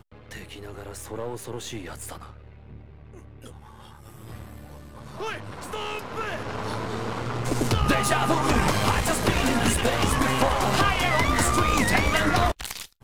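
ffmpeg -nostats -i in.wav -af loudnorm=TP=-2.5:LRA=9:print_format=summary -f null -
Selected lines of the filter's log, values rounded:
Input Integrated:    -23.7 LUFS
Input True Peak:      -6.6 dBTP
Input LRA:            16.2 LU
Input Threshold:     -35.2 LUFS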